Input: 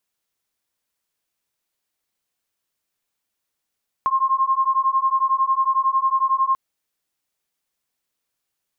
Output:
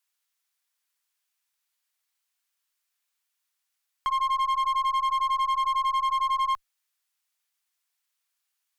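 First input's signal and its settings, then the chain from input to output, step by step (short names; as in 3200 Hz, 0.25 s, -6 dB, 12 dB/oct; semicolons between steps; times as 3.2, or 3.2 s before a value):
beating tones 1060 Hz, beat 11 Hz, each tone -19.5 dBFS 2.49 s
HPF 1100 Hz 12 dB/oct; one-sided clip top -24.5 dBFS, bottom -20.5 dBFS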